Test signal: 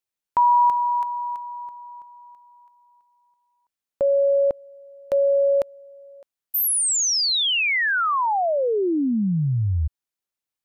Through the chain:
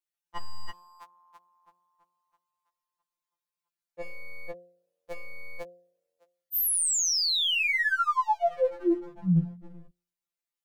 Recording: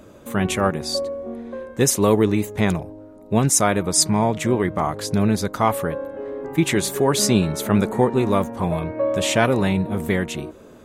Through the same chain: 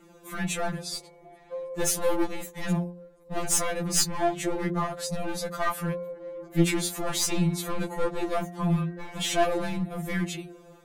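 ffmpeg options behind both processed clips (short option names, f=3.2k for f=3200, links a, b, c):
-af "bandreject=f=58.64:t=h:w=4,bandreject=f=117.28:t=h:w=4,bandreject=f=175.92:t=h:w=4,bandreject=f=234.56:t=h:w=4,bandreject=f=293.2:t=h:w=4,bandreject=f=351.84:t=h:w=4,bandreject=f=410.48:t=h:w=4,bandreject=f=469.12:t=h:w=4,bandreject=f=527.76:t=h:w=4,bandreject=f=586.4:t=h:w=4,bandreject=f=645.04:t=h:w=4,bandreject=f=703.68:t=h:w=4,bandreject=f=762.32:t=h:w=4,aeval=exprs='clip(val(0),-1,0.112)':c=same,afftfilt=real='re*2.83*eq(mod(b,8),0)':imag='im*2.83*eq(mod(b,8),0)':win_size=2048:overlap=0.75,volume=-2.5dB"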